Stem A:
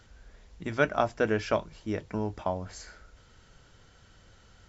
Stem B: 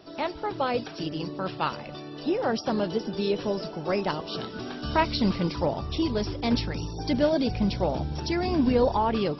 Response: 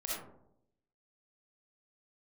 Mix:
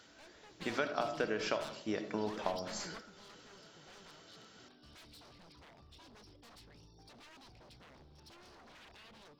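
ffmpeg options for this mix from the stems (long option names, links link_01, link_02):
-filter_complex "[0:a]highpass=230,acompressor=threshold=-30dB:ratio=6,volume=-3dB,asplit=3[link_01][link_02][link_03];[link_02]volume=-9dB[link_04];[1:a]aeval=exprs='0.0422*(abs(mod(val(0)/0.0422+3,4)-2)-1)':channel_layout=same,volume=-15.5dB[link_05];[link_03]apad=whole_len=414538[link_06];[link_05][link_06]sidechaingate=range=-11dB:threshold=-56dB:ratio=16:detection=peak[link_07];[2:a]atrim=start_sample=2205[link_08];[link_04][link_08]afir=irnorm=-1:irlink=0[link_09];[link_01][link_07][link_09]amix=inputs=3:normalize=0,equalizer=frequency=4200:width_type=o:width=1.4:gain=5"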